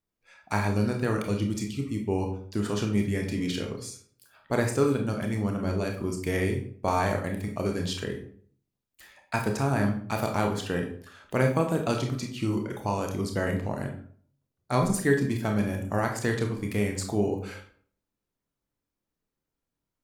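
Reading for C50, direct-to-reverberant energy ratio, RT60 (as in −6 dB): 7.5 dB, 2.5 dB, 0.50 s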